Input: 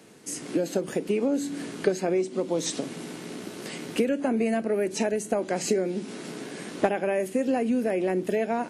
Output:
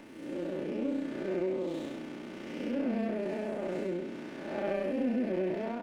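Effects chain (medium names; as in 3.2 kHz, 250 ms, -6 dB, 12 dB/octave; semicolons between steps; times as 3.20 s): spectral blur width 341 ms; high-order bell 7.5 kHz -16 dB; comb 3.4 ms, depth 42%; reverse; upward compressor, threshold -37 dBFS; reverse; granular stretch 0.67×, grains 66 ms; sliding maximum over 5 samples; trim -2.5 dB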